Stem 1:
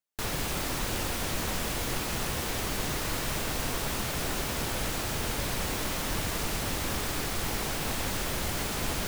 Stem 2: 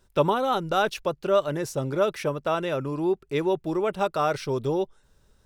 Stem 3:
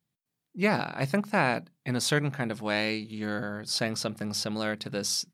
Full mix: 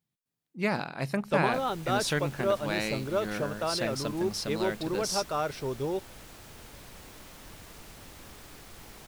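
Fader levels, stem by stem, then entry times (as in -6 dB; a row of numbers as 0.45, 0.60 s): -17.0, -6.0, -3.5 dB; 1.35, 1.15, 0.00 s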